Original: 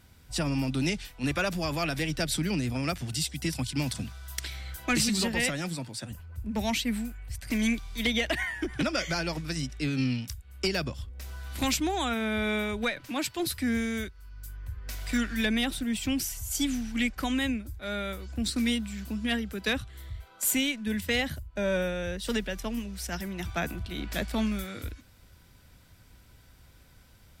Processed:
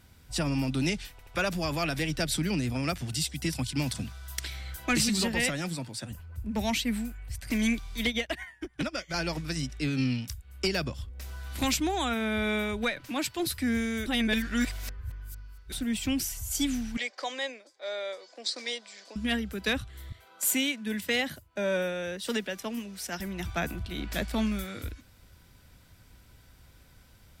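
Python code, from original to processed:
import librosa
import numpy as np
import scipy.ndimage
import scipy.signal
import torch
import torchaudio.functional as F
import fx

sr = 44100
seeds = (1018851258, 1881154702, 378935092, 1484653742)

y = fx.upward_expand(x, sr, threshold_db=-40.0, expansion=2.5, at=(8.05, 9.14))
y = fx.cabinet(y, sr, low_hz=460.0, low_slope=24, high_hz=7100.0, hz=(550.0, 1400.0, 2700.0, 4800.0), db=(6, -8, -7, 6), at=(16.97, 19.16))
y = fx.highpass(y, sr, hz=200.0, slope=12, at=(20.12, 23.2))
y = fx.edit(y, sr, fx.stutter_over(start_s=1.11, slice_s=0.08, count=3),
    fx.reverse_span(start_s=14.06, length_s=1.66), tone=tone)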